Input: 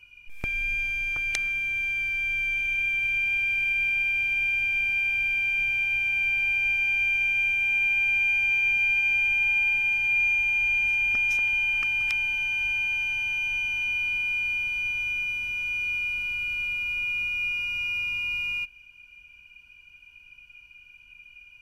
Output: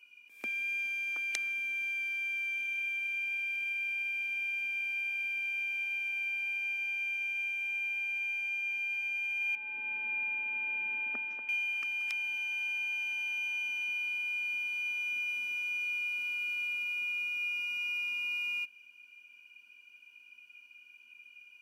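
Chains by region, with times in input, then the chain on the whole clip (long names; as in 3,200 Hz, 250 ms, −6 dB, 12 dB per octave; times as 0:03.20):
0:09.55–0:11.49: low-pass filter 1,200 Hz + low-shelf EQ 77 Hz −10 dB
whole clip: Chebyshev high-pass filter 220 Hz, order 5; high-shelf EQ 6,700 Hz +5 dB; speech leveller; level −8.5 dB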